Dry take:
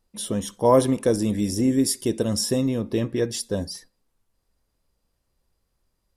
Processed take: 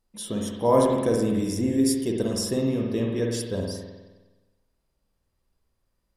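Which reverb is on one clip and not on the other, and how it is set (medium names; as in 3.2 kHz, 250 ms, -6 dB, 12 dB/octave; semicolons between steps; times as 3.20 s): spring tank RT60 1.2 s, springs 52 ms, chirp 45 ms, DRR 0 dB; trim -4.5 dB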